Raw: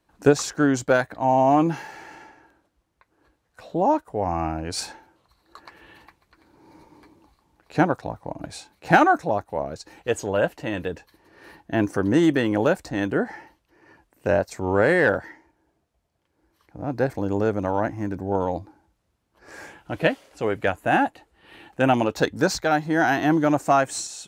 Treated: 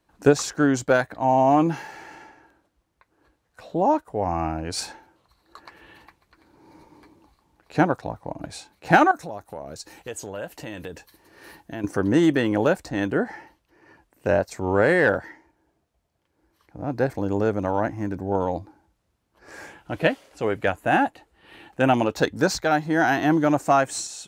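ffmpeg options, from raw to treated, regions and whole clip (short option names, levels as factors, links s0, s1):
-filter_complex "[0:a]asettb=1/sr,asplit=3[s0][s1][s2];[s0]atrim=end=9.114[s3];[s1]atrim=start=9.11:end=11.84,asetpts=PTS-STARTPTS,afade=t=in:d=0.004:c=qsin,afade=t=out:st=2.726:d=0.004:c=qsin,highshelf=f=5500:g=11.5,acompressor=threshold=0.0224:ratio=3:attack=3.2:release=140:knee=1:detection=peak[s4];[s2]atrim=start=11.836[s5];[s3][s4]acrossfade=d=0.004:c1=hsin:c2=qsin[s6];[s6][s5]acrossfade=d=0.004:c1=qsin:c2=hsin"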